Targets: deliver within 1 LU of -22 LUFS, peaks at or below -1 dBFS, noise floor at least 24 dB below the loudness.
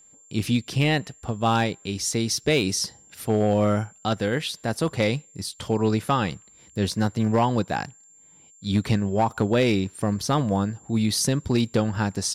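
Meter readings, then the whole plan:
clipped 0.5%; flat tops at -13.5 dBFS; steady tone 7300 Hz; tone level -51 dBFS; loudness -24.5 LUFS; peak -13.5 dBFS; loudness target -22.0 LUFS
-> clip repair -13.5 dBFS; notch 7300 Hz, Q 30; gain +2.5 dB

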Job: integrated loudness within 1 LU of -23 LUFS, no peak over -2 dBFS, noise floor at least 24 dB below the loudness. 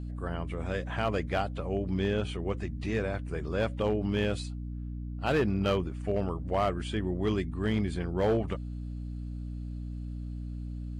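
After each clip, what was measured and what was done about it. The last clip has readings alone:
clipped 0.6%; flat tops at -20.5 dBFS; hum 60 Hz; harmonics up to 300 Hz; hum level -35 dBFS; loudness -32.0 LUFS; peak -20.5 dBFS; loudness target -23.0 LUFS
-> clip repair -20.5 dBFS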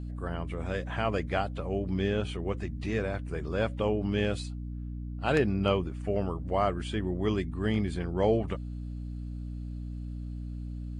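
clipped 0.0%; hum 60 Hz; harmonics up to 300 Hz; hum level -35 dBFS
-> notches 60/120/180/240/300 Hz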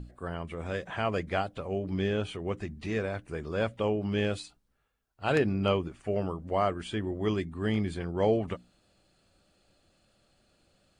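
hum none; loudness -31.5 LUFS; peak -11.5 dBFS; loudness target -23.0 LUFS
-> gain +8.5 dB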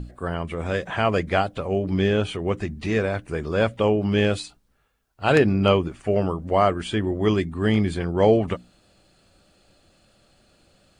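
loudness -23.0 LUFS; peak -3.0 dBFS; noise floor -64 dBFS

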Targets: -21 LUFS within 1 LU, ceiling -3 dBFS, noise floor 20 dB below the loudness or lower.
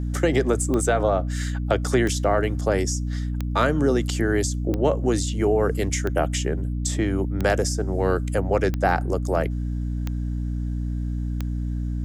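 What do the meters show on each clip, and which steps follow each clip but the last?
clicks 9; hum 60 Hz; harmonics up to 300 Hz; hum level -24 dBFS; loudness -24.0 LUFS; peak -6.5 dBFS; loudness target -21.0 LUFS
-> de-click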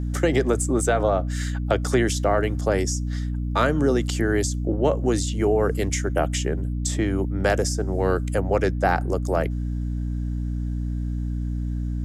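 clicks 0; hum 60 Hz; harmonics up to 300 Hz; hum level -24 dBFS
-> de-hum 60 Hz, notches 5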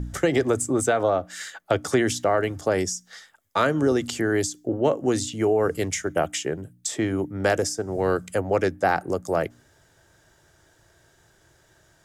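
hum none; loudness -24.5 LUFS; peak -8.0 dBFS; loudness target -21.0 LUFS
-> gain +3.5 dB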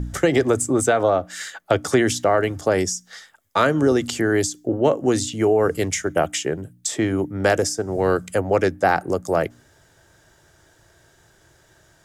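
loudness -21.0 LUFS; peak -4.5 dBFS; noise floor -57 dBFS

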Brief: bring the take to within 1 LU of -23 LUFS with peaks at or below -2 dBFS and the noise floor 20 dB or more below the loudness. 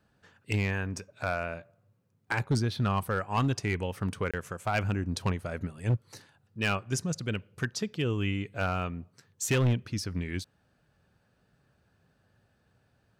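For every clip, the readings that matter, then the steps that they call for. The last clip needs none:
clipped 0.7%; flat tops at -21.0 dBFS; dropouts 1; longest dropout 26 ms; loudness -31.5 LUFS; peak -21.0 dBFS; loudness target -23.0 LUFS
-> clip repair -21 dBFS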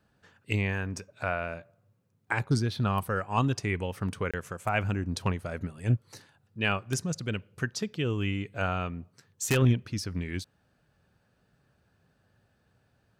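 clipped 0.0%; dropouts 1; longest dropout 26 ms
-> interpolate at 4.31, 26 ms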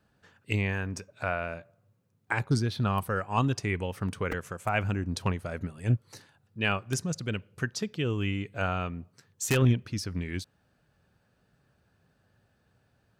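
dropouts 0; loudness -30.5 LUFS; peak -12.0 dBFS; loudness target -23.0 LUFS
-> gain +7.5 dB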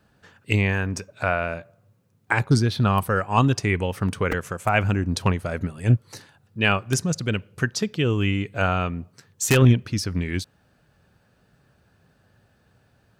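loudness -23.0 LUFS; peak -4.5 dBFS; noise floor -63 dBFS

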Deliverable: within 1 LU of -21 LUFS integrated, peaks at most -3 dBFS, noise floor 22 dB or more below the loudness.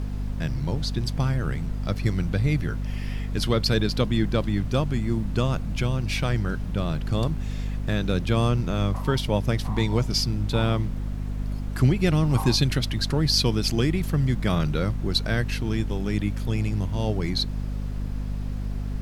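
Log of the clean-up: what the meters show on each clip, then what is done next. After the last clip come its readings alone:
hum 50 Hz; harmonics up to 250 Hz; hum level -26 dBFS; noise floor -30 dBFS; noise floor target -48 dBFS; loudness -25.5 LUFS; peak -8.0 dBFS; loudness target -21.0 LUFS
-> de-hum 50 Hz, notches 5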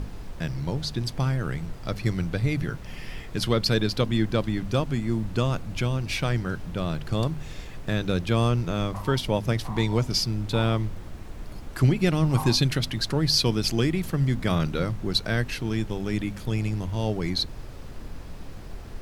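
hum none; noise floor -39 dBFS; noise floor target -48 dBFS
-> noise print and reduce 9 dB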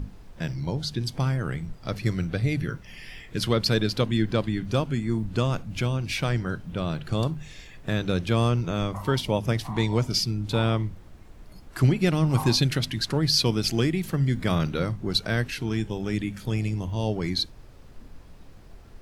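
noise floor -47 dBFS; noise floor target -48 dBFS
-> noise print and reduce 6 dB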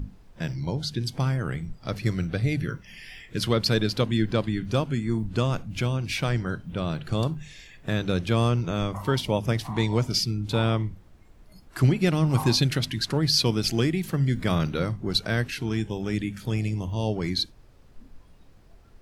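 noise floor -53 dBFS; loudness -26.0 LUFS; peak -9.0 dBFS; loudness target -21.0 LUFS
-> gain +5 dB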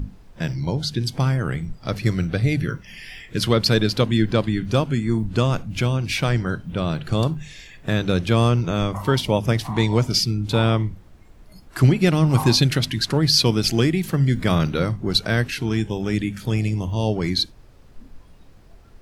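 loudness -21.0 LUFS; peak -4.0 dBFS; noise floor -48 dBFS

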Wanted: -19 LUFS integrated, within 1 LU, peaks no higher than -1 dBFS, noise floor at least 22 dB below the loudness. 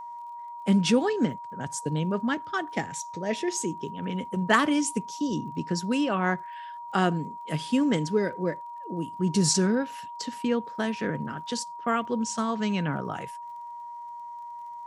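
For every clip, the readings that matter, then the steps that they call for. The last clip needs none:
ticks 30/s; steady tone 950 Hz; tone level -37 dBFS; loudness -28.0 LUFS; peak -5.5 dBFS; loudness target -19.0 LUFS
-> de-click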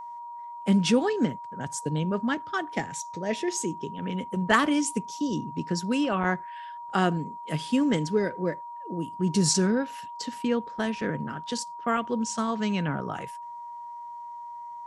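ticks 0.067/s; steady tone 950 Hz; tone level -37 dBFS
-> notch 950 Hz, Q 30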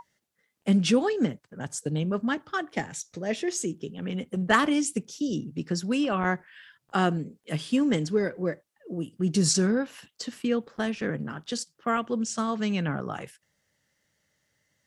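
steady tone none; loudness -28.0 LUFS; peak -5.0 dBFS; loudness target -19.0 LUFS
-> gain +9 dB; limiter -1 dBFS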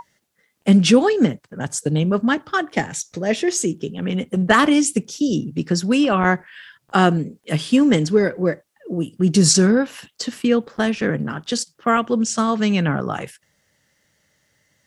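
loudness -19.0 LUFS; peak -1.0 dBFS; noise floor -68 dBFS

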